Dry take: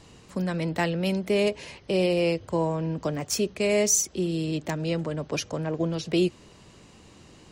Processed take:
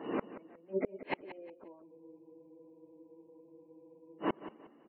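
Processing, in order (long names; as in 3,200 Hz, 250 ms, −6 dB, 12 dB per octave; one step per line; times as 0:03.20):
camcorder AGC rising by 61 dB per second
low-pass filter 1,800 Hz 12 dB per octave
mains-hum notches 60/120/180/240/300/360/420/480/540 Hz
gate on every frequency bin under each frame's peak −25 dB strong
four-pole ladder high-pass 250 Hz, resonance 45%
time stretch by phase vocoder 0.65×
amplitude tremolo 0.7 Hz, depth 72%
gate with flip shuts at −38 dBFS, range −35 dB
on a send: repeating echo 180 ms, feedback 29%, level −14 dB
on the sum: frozen spectrum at 0:01.88, 2.30 s
level +18 dB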